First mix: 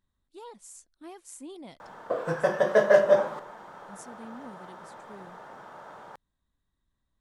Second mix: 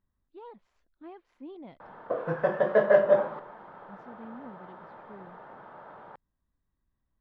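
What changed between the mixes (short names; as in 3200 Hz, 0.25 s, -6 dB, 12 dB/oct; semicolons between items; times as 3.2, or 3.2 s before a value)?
speech: add running mean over 5 samples; master: add air absorption 400 m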